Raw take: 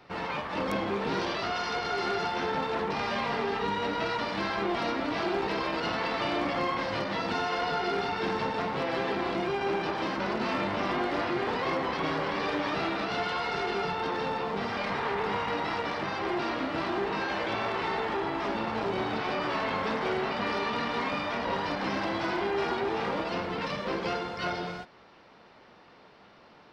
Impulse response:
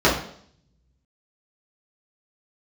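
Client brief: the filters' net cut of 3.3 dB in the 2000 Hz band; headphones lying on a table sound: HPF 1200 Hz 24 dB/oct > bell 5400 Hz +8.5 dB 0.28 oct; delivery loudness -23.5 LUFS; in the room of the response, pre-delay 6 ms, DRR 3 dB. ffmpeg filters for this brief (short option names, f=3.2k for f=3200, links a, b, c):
-filter_complex "[0:a]equalizer=f=2k:t=o:g=-4,asplit=2[a][b];[1:a]atrim=start_sample=2205,adelay=6[c];[b][c]afir=irnorm=-1:irlink=0,volume=-25dB[d];[a][d]amix=inputs=2:normalize=0,highpass=f=1.2k:w=0.5412,highpass=f=1.2k:w=1.3066,equalizer=f=5.4k:t=o:w=0.28:g=8.5,volume=11.5dB"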